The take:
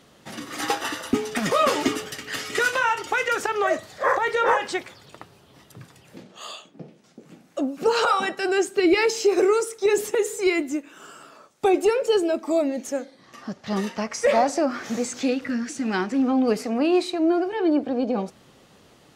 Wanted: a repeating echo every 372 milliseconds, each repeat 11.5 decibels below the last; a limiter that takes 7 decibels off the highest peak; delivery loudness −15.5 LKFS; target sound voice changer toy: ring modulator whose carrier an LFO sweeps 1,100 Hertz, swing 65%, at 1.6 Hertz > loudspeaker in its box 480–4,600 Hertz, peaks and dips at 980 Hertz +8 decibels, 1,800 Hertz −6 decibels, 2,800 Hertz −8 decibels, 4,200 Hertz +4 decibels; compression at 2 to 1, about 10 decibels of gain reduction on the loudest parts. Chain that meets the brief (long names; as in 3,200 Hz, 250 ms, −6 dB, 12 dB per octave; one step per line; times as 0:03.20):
downward compressor 2 to 1, threshold −34 dBFS
brickwall limiter −23.5 dBFS
repeating echo 372 ms, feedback 27%, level −11.5 dB
ring modulator whose carrier an LFO sweeps 1,100 Hz, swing 65%, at 1.6 Hz
loudspeaker in its box 480–4,600 Hz, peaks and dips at 980 Hz +8 dB, 1,800 Hz −6 dB, 2,800 Hz −8 dB, 4,200 Hz +4 dB
level +20 dB